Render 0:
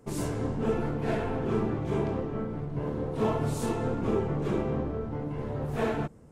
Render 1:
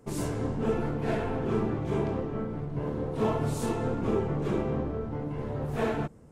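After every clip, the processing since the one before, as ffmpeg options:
-af anull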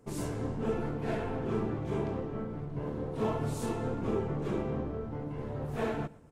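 -af "aecho=1:1:120|240|360:0.075|0.0285|0.0108,volume=0.631"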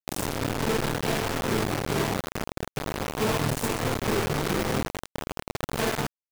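-filter_complex "[0:a]asplit=2[s0][s1];[s1]adelay=47,volume=0.398[s2];[s0][s2]amix=inputs=2:normalize=0,acrusher=bits=4:mix=0:aa=0.000001,volume=1.58"

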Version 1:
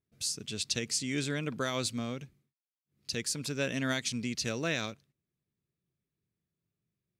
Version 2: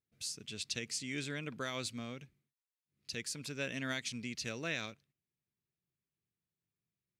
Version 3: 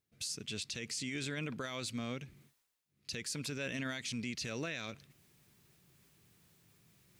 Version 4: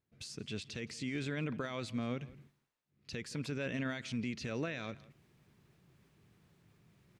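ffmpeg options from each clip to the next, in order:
-af "equalizer=f=2300:w=1.1:g=5,volume=0.398"
-af "alimiter=level_in=3.76:limit=0.0631:level=0:latency=1:release=16,volume=0.266,areverse,acompressor=mode=upward:threshold=0.00178:ratio=2.5,areverse,volume=1.88"
-filter_complex "[0:a]lowpass=f=1600:p=1,asplit=2[s0][s1];[s1]adelay=169.1,volume=0.1,highshelf=f=4000:g=-3.8[s2];[s0][s2]amix=inputs=2:normalize=0,volume=1.41"

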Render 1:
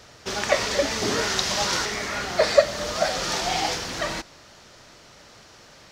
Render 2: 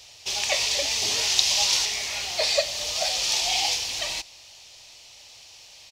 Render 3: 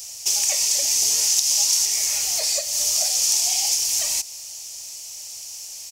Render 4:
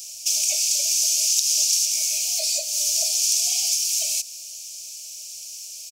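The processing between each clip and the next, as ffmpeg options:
-af "firequalizer=gain_entry='entry(100,0);entry(170,-11);entry(810,4);entry(1400,-9);entry(2500,13)':delay=0.05:min_phase=1,volume=0.398"
-af "acompressor=threshold=0.0282:ratio=3,aexciter=amount=8:drive=6.6:freq=5500"
-af "firequalizer=gain_entry='entry(130,0);entry(410,-21);entry(630,10);entry(1000,-28);entry(1700,-30);entry(2300,8)':delay=0.05:min_phase=1,volume=0.355"

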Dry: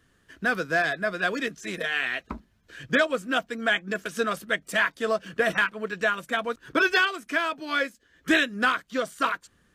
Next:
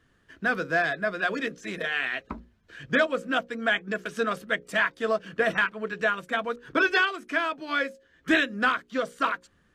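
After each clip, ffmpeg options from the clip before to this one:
-af "lowpass=f=3600:p=1,bandreject=f=60:t=h:w=6,bandreject=f=120:t=h:w=6,bandreject=f=180:t=h:w=6,bandreject=f=240:t=h:w=6,bandreject=f=300:t=h:w=6,bandreject=f=360:t=h:w=6,bandreject=f=420:t=h:w=6,bandreject=f=480:t=h:w=6,bandreject=f=540:t=h:w=6"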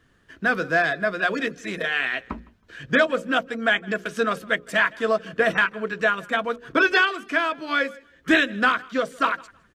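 -af "aecho=1:1:160|320:0.0631|0.0145,volume=1.58"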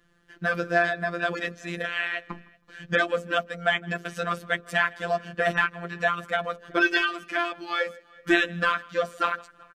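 -filter_complex "[0:a]afftfilt=real='hypot(re,im)*cos(PI*b)':imag='0':win_size=1024:overlap=0.75,asplit=2[s0][s1];[s1]adelay=379,volume=0.0501,highshelf=f=4000:g=-8.53[s2];[s0][s2]amix=inputs=2:normalize=0"

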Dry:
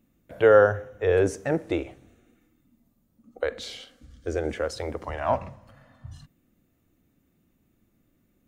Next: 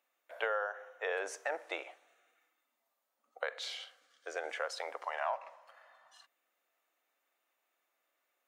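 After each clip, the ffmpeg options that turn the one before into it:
-af "highpass=f=680:w=0.5412,highpass=f=680:w=1.3066,highshelf=f=4900:g=-8,acompressor=threshold=0.0282:ratio=8"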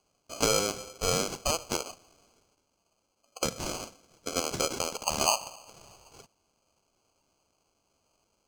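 -af "acrusher=samples=24:mix=1:aa=0.000001,equalizer=f=6200:w=0.94:g=14.5,volume=2"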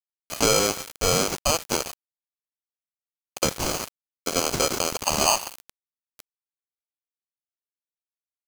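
-filter_complex "[0:a]asplit=2[s0][s1];[s1]alimiter=limit=0.158:level=0:latency=1:release=14,volume=1[s2];[s0][s2]amix=inputs=2:normalize=0,acrusher=bits=4:mix=0:aa=0.000001,volume=1.19"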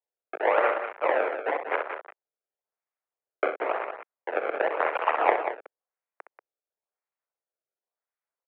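-af "acrusher=samples=28:mix=1:aa=0.000001:lfo=1:lforange=44.8:lforate=0.95,highpass=f=380:t=q:w=0.5412,highpass=f=380:t=q:w=1.307,lowpass=f=2300:t=q:w=0.5176,lowpass=f=2300:t=q:w=0.7071,lowpass=f=2300:t=q:w=1.932,afreqshift=65,aecho=1:1:64.14|186.6:0.355|0.355"

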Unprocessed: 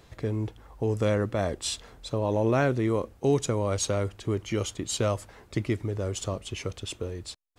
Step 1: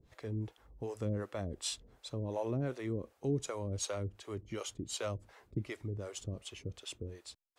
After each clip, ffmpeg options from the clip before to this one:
-filter_complex "[0:a]acrossover=split=430[s0][s1];[s0]aeval=exprs='val(0)*(1-1/2+1/2*cos(2*PI*2.7*n/s))':c=same[s2];[s1]aeval=exprs='val(0)*(1-1/2-1/2*cos(2*PI*2.7*n/s))':c=same[s3];[s2][s3]amix=inputs=2:normalize=0,volume=0.501"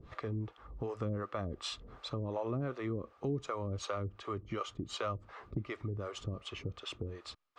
-af "lowpass=3600,equalizer=f=1200:w=6.2:g=14.5,acompressor=threshold=0.00224:ratio=2,volume=3.35"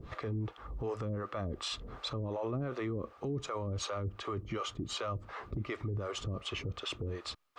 -af "alimiter=level_in=3.55:limit=0.0631:level=0:latency=1:release=13,volume=0.282,volume=2.11"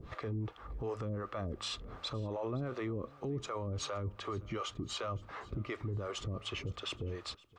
-af "aecho=1:1:517|1034:0.0668|0.0147,volume=0.841"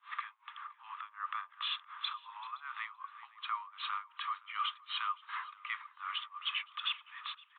-filter_complex "[0:a]asuperpass=centerf=2400:order=20:qfactor=0.5,aresample=8000,aresample=44100,asplit=2[s0][s1];[s1]adelay=384.8,volume=0.178,highshelf=f=4000:g=-8.66[s2];[s0][s2]amix=inputs=2:normalize=0,volume=2.11"

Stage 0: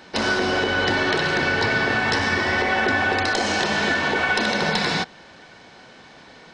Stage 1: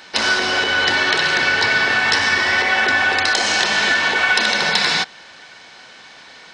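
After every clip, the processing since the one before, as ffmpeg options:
-af "tiltshelf=f=760:g=-7.5,volume=1.12"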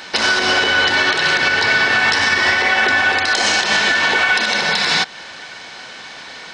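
-af "alimiter=limit=0.224:level=0:latency=1:release=199,volume=2.37"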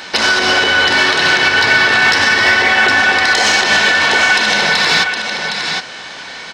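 -filter_complex "[0:a]aecho=1:1:763:0.473,asplit=2[s0][s1];[s1]asoftclip=type=tanh:threshold=0.188,volume=0.398[s2];[s0][s2]amix=inputs=2:normalize=0,volume=1.12"

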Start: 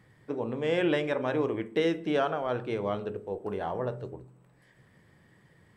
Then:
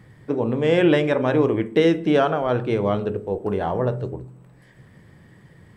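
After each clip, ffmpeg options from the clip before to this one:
-af "lowshelf=f=320:g=6.5,volume=2.24"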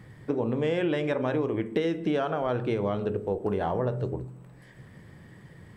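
-af "acompressor=threshold=0.0631:ratio=6"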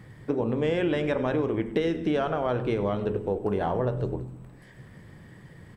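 -filter_complex "[0:a]asplit=7[s0][s1][s2][s3][s4][s5][s6];[s1]adelay=98,afreqshift=-84,volume=0.15[s7];[s2]adelay=196,afreqshift=-168,volume=0.0923[s8];[s3]adelay=294,afreqshift=-252,volume=0.0575[s9];[s4]adelay=392,afreqshift=-336,volume=0.0355[s10];[s5]adelay=490,afreqshift=-420,volume=0.0221[s11];[s6]adelay=588,afreqshift=-504,volume=0.0136[s12];[s0][s7][s8][s9][s10][s11][s12]amix=inputs=7:normalize=0,volume=1.12"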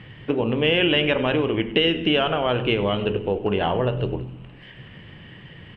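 -af "lowpass=f=2900:t=q:w=10,volume=1.58"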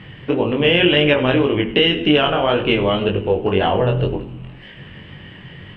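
-af "flanger=delay=20:depth=3.3:speed=1.9,volume=2.51"

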